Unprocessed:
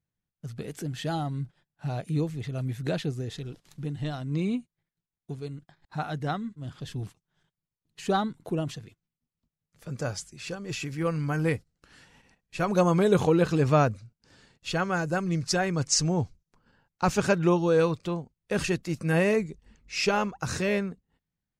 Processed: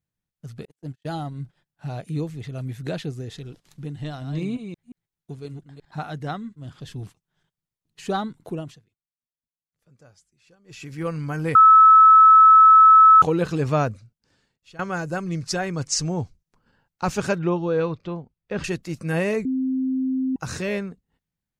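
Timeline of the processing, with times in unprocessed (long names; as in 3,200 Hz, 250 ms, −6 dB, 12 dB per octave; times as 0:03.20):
0:00.65–0:01.43: noise gate −33 dBFS, range −45 dB
0:04.04–0:06.04: delay that plays each chunk backwards 176 ms, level −7 dB
0:08.50–0:10.98: duck −21.5 dB, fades 0.34 s
0:11.55–0:13.22: beep over 1,300 Hz −7.5 dBFS
0:13.96–0:14.79: fade out quadratic, to −18 dB
0:17.39–0:18.64: high-frequency loss of the air 190 metres
0:19.45–0:20.36: beep over 261 Hz −20.5 dBFS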